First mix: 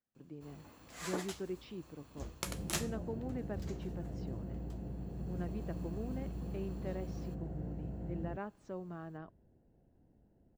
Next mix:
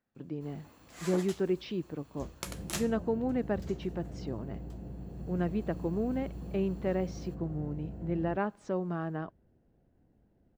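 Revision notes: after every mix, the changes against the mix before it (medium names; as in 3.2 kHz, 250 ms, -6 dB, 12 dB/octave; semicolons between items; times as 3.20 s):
speech +11.0 dB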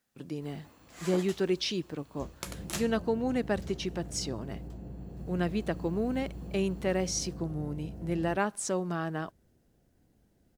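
speech: remove tape spacing loss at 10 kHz 37 dB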